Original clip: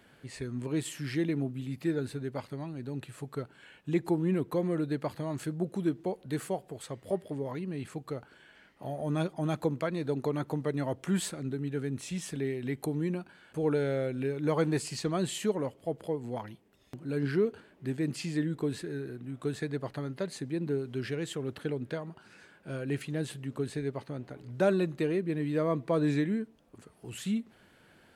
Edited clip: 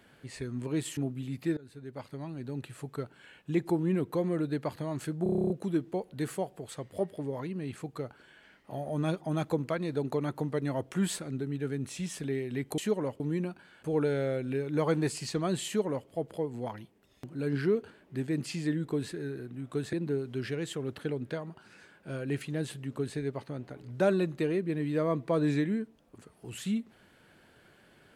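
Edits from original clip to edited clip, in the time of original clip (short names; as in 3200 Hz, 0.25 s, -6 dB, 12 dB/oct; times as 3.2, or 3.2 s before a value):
0.97–1.36 cut
1.96–2.73 fade in, from -23.5 dB
5.62 stutter 0.03 s, 10 plays
15.36–15.78 copy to 12.9
19.63–20.53 cut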